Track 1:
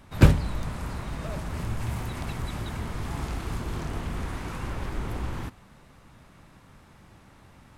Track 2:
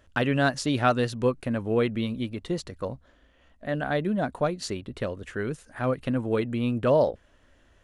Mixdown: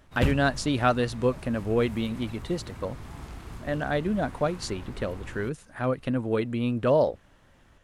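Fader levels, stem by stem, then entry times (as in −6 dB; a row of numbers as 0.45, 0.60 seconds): −9.0, −0.5 decibels; 0.00, 0.00 seconds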